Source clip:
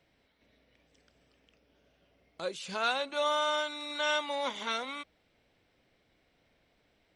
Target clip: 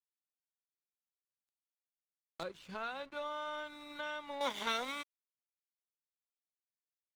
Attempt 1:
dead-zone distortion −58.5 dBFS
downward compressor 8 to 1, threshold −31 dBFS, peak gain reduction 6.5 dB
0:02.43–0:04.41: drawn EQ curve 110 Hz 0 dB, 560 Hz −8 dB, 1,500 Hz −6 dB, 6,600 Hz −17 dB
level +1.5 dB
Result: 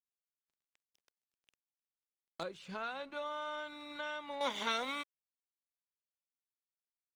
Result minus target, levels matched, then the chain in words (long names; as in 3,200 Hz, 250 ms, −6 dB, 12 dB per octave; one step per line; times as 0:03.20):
dead-zone distortion: distortion −9 dB
dead-zone distortion −48.5 dBFS
downward compressor 8 to 1, threshold −31 dBFS, peak gain reduction 6 dB
0:02.43–0:04.41: drawn EQ curve 110 Hz 0 dB, 560 Hz −8 dB, 1,500 Hz −6 dB, 6,600 Hz −17 dB
level +1.5 dB